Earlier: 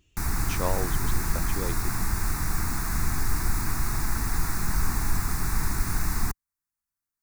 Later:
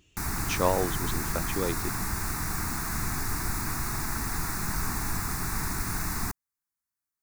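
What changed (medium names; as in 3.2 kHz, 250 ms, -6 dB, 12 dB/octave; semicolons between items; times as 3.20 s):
speech +5.0 dB; master: add bass shelf 66 Hz -11 dB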